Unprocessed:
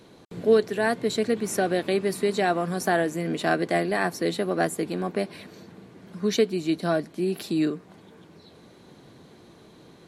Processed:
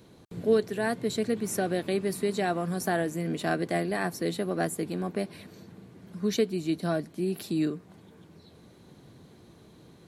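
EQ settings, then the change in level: bell 75 Hz +8.5 dB 2.9 oct; high shelf 9400 Hz +9 dB; -6.0 dB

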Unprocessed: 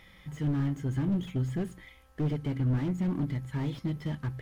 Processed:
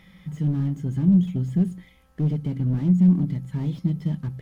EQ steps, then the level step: dynamic EQ 1600 Hz, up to -6 dB, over -56 dBFS, Q 0.88; bell 180 Hz +14.5 dB 0.55 oct; 0.0 dB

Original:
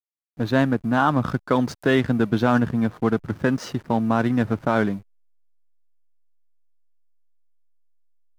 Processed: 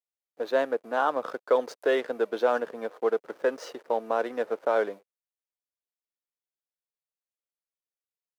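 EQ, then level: ladder high-pass 430 Hz, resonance 60%; +3.0 dB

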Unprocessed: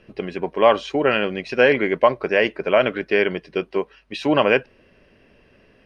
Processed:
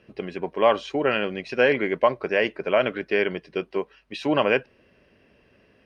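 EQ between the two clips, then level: HPF 49 Hz; -4.0 dB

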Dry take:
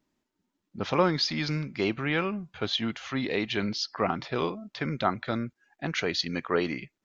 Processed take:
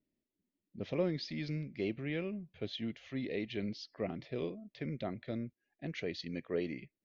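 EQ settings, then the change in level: air absorption 70 m; band shelf 1100 Hz -14.5 dB 1.2 oct; high shelf 2200 Hz -7.5 dB; -7.5 dB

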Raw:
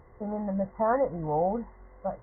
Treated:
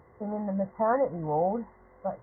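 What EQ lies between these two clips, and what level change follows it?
HPF 91 Hz 12 dB/oct; 0.0 dB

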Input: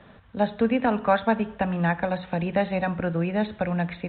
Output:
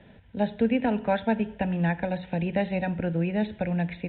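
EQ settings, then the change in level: air absorption 83 m; bell 1000 Hz +9.5 dB 0.34 oct; fixed phaser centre 2700 Hz, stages 4; 0.0 dB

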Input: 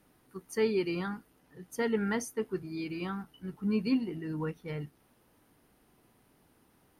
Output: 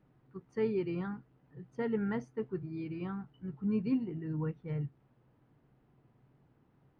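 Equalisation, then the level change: air absorption 52 m; tape spacing loss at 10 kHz 30 dB; bell 130 Hz +13.5 dB 0.42 oct; -2.5 dB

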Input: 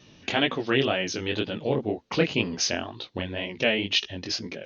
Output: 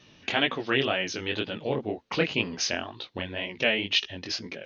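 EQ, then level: tilt shelf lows -4.5 dB; high shelf 4100 Hz -11 dB; 0.0 dB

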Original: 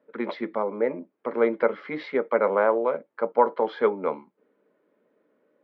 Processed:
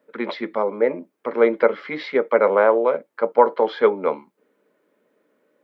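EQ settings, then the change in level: dynamic EQ 470 Hz, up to +4 dB, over -28 dBFS, Q 0.94; high shelf 2200 Hz +9.5 dB; +1.5 dB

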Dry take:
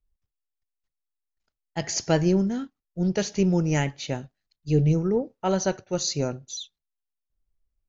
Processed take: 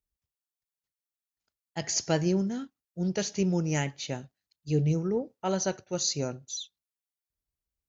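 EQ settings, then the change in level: HPF 61 Hz; high shelf 4500 Hz +7 dB; -5.0 dB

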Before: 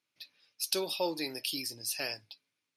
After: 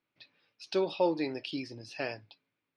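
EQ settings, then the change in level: air absorption 58 m; tape spacing loss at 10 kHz 31 dB; +7.0 dB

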